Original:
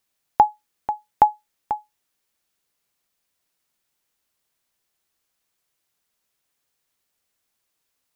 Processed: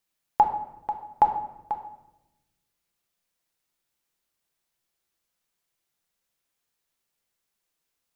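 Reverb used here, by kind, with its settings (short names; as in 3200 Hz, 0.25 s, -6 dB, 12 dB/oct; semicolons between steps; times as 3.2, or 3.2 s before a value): shoebox room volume 380 m³, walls mixed, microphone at 0.77 m; gain -5.5 dB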